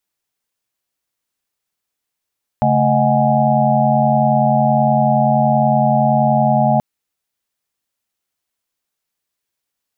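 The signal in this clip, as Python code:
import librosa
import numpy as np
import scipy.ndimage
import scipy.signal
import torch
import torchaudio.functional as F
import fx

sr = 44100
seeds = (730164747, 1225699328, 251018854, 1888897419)

y = fx.chord(sr, length_s=4.18, notes=(49, 57, 75, 78, 80), wave='sine', level_db=-17.5)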